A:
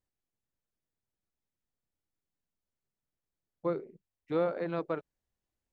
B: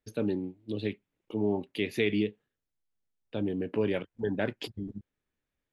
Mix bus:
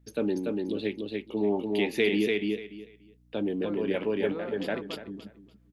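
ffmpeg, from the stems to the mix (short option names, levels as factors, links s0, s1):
-filter_complex "[0:a]aeval=exprs='val(0)+0.00251*(sin(2*PI*60*n/s)+sin(2*PI*2*60*n/s)/2+sin(2*PI*3*60*n/s)/3+sin(2*PI*4*60*n/s)/4+sin(2*PI*5*60*n/s)/5)':c=same,acontrast=90,volume=0.178,asplit=3[s0][s1][s2];[s1]volume=0.2[s3];[1:a]highpass=210,acontrast=80,volume=0.631,asplit=2[s4][s5];[s5]volume=0.708[s6];[s2]apad=whole_len=252471[s7];[s4][s7]sidechaincompress=threshold=0.00562:ratio=8:attack=47:release=367[s8];[s3][s6]amix=inputs=2:normalize=0,aecho=0:1:290|580|870:1|0.2|0.04[s9];[s0][s8][s9]amix=inputs=3:normalize=0"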